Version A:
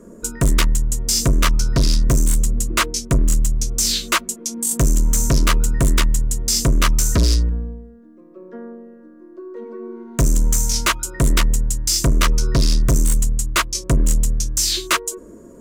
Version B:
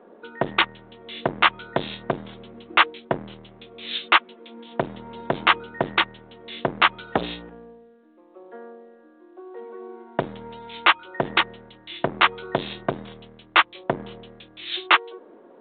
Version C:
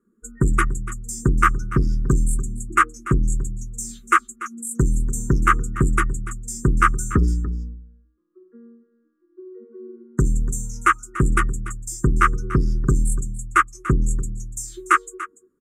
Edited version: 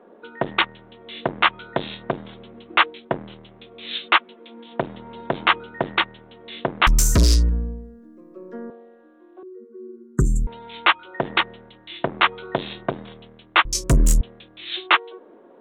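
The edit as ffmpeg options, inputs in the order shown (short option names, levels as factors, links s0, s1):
-filter_complex "[0:a]asplit=2[s0][s1];[1:a]asplit=4[s2][s3][s4][s5];[s2]atrim=end=6.872[s6];[s0]atrim=start=6.868:end=8.702[s7];[s3]atrim=start=8.698:end=9.432[s8];[2:a]atrim=start=9.428:end=10.472[s9];[s4]atrim=start=10.468:end=13.652[s10];[s1]atrim=start=13.648:end=14.212[s11];[s5]atrim=start=14.208[s12];[s6][s7]acrossfade=d=0.004:c1=hsin:c2=hsin[s13];[s13][s8]acrossfade=d=0.004:c1=hsin:c2=hsin[s14];[s14][s9]acrossfade=d=0.004:c1=hsin:c2=hsin[s15];[s15][s10]acrossfade=d=0.004:c1=hsin:c2=hsin[s16];[s16][s11]acrossfade=d=0.004:c1=hsin:c2=hsin[s17];[s17][s12]acrossfade=d=0.004:c1=hsin:c2=hsin"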